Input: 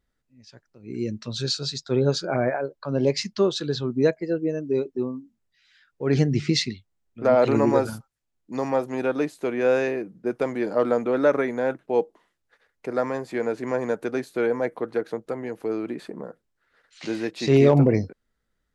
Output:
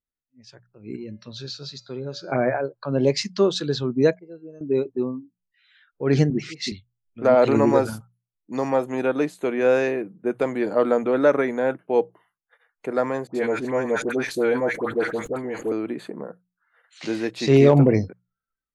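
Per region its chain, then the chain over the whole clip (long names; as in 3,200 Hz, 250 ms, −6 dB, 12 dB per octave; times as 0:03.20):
0:00.96–0:02.32: low-pass filter 6,100 Hz 24 dB per octave + downward compressor 2 to 1, threshold −25 dBFS + tuned comb filter 190 Hz, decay 0.85 s, harmonics odd
0:04.19–0:04.61: parametric band 2,000 Hz −14.5 dB 0.56 octaves + tuned comb filter 83 Hz, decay 0.53 s, harmonics odd, mix 90%
0:06.30–0:06.72: high-pass filter 180 Hz 24 dB per octave + volume swells 245 ms + all-pass dispersion highs, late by 64 ms, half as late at 1,400 Hz
0:13.27–0:15.72: all-pass dispersion highs, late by 79 ms, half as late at 1,200 Hz + level that may fall only so fast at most 100 dB per second
whole clip: noise reduction from a noise print of the clip's start 22 dB; mains-hum notches 60/120/180 Hz; level +2 dB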